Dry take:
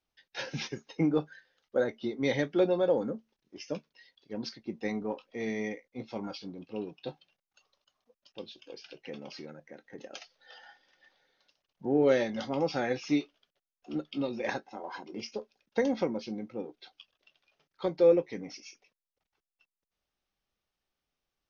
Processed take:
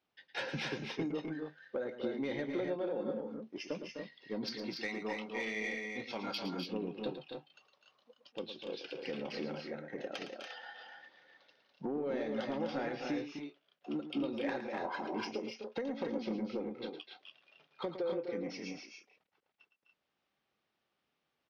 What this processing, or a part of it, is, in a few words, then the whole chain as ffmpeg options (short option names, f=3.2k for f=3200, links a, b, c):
AM radio: -filter_complex "[0:a]asplit=3[a][b][c];[a]afade=t=out:st=4.47:d=0.02[d];[b]tiltshelf=f=1.2k:g=-9.5,afade=t=in:st=4.47:d=0.02,afade=t=out:st=6.38:d=0.02[e];[c]afade=t=in:st=6.38:d=0.02[f];[d][e][f]amix=inputs=3:normalize=0,highpass=140,lowpass=3.6k,acompressor=threshold=-38dB:ratio=8,asoftclip=type=tanh:threshold=-32dB,aecho=1:1:110.8|253.6|285.7:0.316|0.398|0.501,volume=4.5dB"